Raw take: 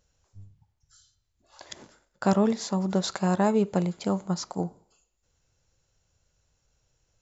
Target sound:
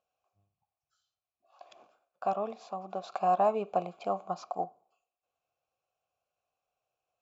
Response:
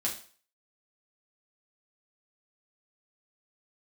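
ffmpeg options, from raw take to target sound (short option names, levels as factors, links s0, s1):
-filter_complex "[0:a]asettb=1/sr,asplit=3[s0][s1][s2];[s0]atrim=end=3.124[s3];[s1]atrim=start=3.12:end=4.65,asetpts=PTS-STARTPTS,afade=t=in:d=0.004:c=qsin,afade=t=out:st=1.526:d=0.004:c=qsin,acontrast=35[s4];[s2]atrim=start=4.646[s5];[s3][s4]acrossfade=d=0.004:c1=hsin:c2=qsin[s6];[s6][s5]acrossfade=d=0.004:c1=qsin:c2=hsin,asplit=3[s7][s8][s9];[s7]bandpass=f=730:t=q:w=8,volume=1[s10];[s8]bandpass=f=1090:t=q:w=8,volume=0.501[s11];[s9]bandpass=f=2440:t=q:w=8,volume=0.355[s12];[s10][s11][s12]amix=inputs=3:normalize=0,volume=1.5"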